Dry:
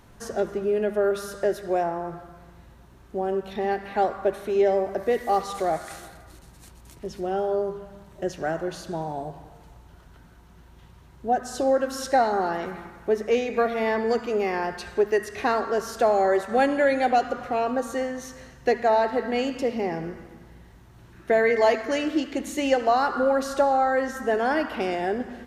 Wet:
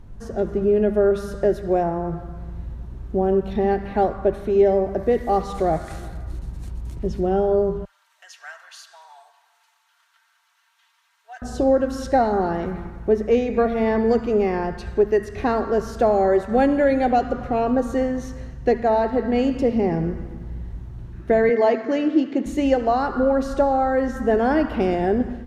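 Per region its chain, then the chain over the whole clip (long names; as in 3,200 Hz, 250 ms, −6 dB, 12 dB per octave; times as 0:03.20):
0:07.85–0:11.42: Bessel high-pass filter 1,800 Hz, order 6 + comb filter 4.4 ms, depth 54%
0:21.49–0:22.46: high-pass filter 170 Hz 24 dB per octave + high-frequency loss of the air 74 metres
whole clip: spectral tilt −4.5 dB per octave; automatic gain control gain up to 7 dB; high-shelf EQ 2,800 Hz +9.5 dB; level −5.5 dB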